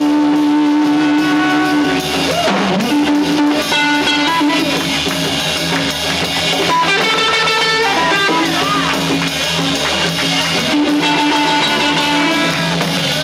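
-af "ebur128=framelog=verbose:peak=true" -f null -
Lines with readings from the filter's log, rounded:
Integrated loudness:
  I:         -13.1 LUFS
  Threshold: -23.1 LUFS
Loudness range:
  LRA:         1.1 LU
  Threshold: -33.1 LUFS
  LRA low:   -13.6 LUFS
  LRA high:  -12.5 LUFS
True peak:
  Peak:       -3.0 dBFS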